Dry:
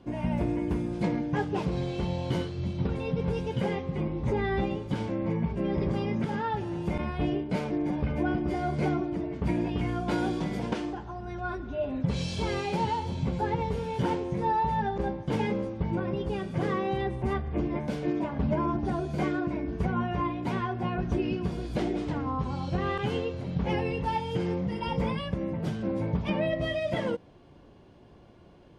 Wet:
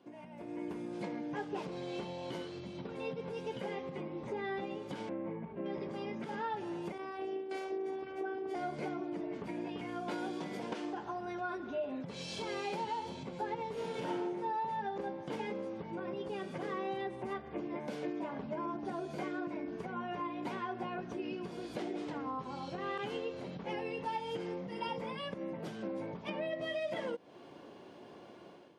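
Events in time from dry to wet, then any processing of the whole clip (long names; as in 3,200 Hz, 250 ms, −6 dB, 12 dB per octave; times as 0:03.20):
0:05.09–0:05.66: high-frequency loss of the air 480 metres
0:06.92–0:08.55: phases set to zero 385 Hz
0:13.73–0:14.26: thrown reverb, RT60 0.8 s, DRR −5.5 dB
whole clip: downward compressor, threshold −39 dBFS; high-pass filter 280 Hz 12 dB per octave; automatic gain control gain up to 12 dB; level −7 dB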